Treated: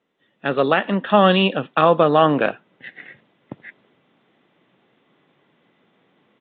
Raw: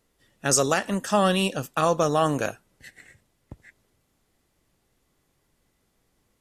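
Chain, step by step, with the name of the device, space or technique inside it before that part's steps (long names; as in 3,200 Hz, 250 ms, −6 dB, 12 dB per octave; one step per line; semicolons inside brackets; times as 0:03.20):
Bluetooth headset (high-pass filter 160 Hz 24 dB per octave; automatic gain control gain up to 12 dB; downsampling to 8,000 Hz; SBC 64 kbit/s 16,000 Hz)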